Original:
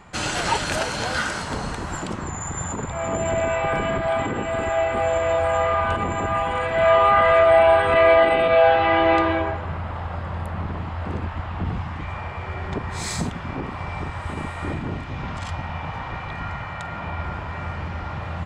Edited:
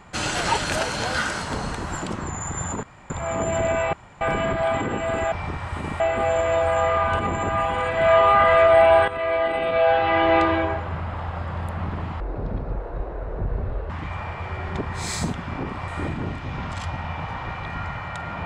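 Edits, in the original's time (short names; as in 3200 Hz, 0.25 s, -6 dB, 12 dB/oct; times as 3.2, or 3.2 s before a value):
2.83 insert room tone 0.27 s
3.66 insert room tone 0.28 s
7.85–9.17 fade in, from -12.5 dB
10.97–11.87 speed 53%
13.85–14.53 move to 4.77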